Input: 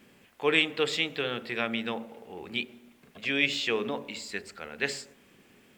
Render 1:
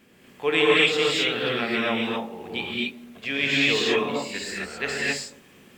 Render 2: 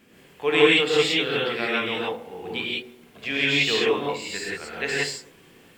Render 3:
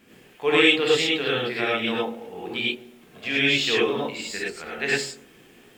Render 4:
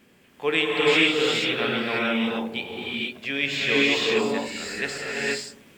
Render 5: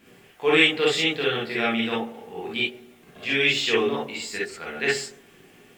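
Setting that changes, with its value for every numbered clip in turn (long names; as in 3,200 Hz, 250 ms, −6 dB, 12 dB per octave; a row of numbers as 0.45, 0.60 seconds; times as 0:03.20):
reverb whose tail is shaped and stops, gate: 290, 200, 130, 510, 80 milliseconds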